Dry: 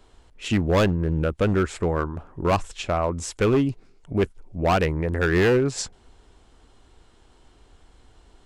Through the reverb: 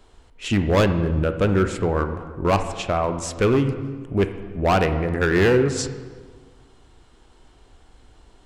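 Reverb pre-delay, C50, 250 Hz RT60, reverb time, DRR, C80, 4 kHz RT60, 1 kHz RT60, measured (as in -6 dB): 16 ms, 9.5 dB, 1.7 s, 1.5 s, 8.0 dB, 11.0 dB, 1.2 s, 1.5 s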